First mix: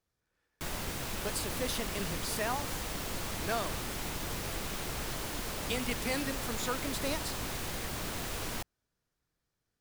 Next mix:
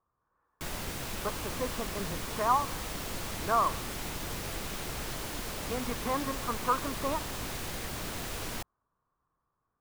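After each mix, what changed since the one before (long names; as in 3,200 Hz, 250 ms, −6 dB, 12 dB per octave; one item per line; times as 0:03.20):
speech: add low-pass with resonance 1,100 Hz, resonance Q 8.6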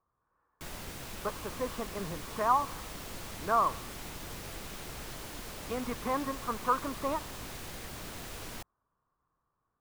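background −5.5 dB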